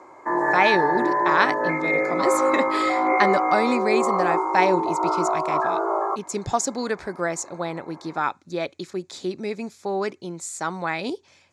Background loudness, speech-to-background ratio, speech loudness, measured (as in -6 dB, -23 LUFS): -22.5 LUFS, -3.5 dB, -26.0 LUFS